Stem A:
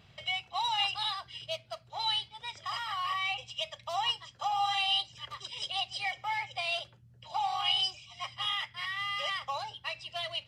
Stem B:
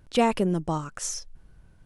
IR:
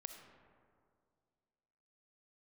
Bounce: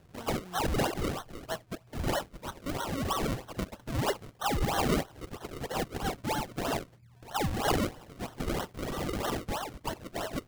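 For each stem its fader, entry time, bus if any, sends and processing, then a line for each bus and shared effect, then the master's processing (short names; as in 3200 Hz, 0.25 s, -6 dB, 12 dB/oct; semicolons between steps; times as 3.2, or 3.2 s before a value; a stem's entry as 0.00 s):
+1.5 dB, 0.00 s, no send, dry
-9.5 dB, 0.00 s, no send, expander -41 dBFS; compressor 6:1, threshold -35 dBFS, peak gain reduction 17.5 dB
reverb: off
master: decimation with a swept rate 36×, swing 100% 3.1 Hz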